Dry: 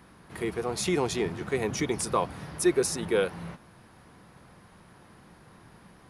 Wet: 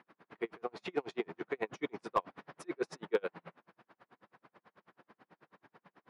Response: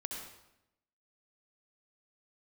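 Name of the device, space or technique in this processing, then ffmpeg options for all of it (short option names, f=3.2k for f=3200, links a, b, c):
helicopter radio: -af "highpass=310,lowpass=2.7k,aeval=exprs='val(0)*pow(10,-40*(0.5-0.5*cos(2*PI*9.2*n/s))/20)':c=same,asoftclip=type=hard:threshold=-20dB"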